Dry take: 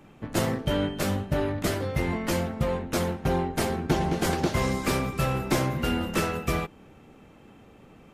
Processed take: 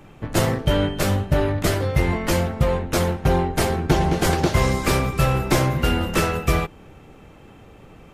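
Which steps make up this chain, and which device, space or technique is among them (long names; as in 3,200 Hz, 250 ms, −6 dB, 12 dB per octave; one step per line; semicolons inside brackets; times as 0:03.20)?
low shelf boost with a cut just above (low-shelf EQ 96 Hz +6.5 dB; parametric band 230 Hz −5.5 dB 0.62 octaves)
level +6 dB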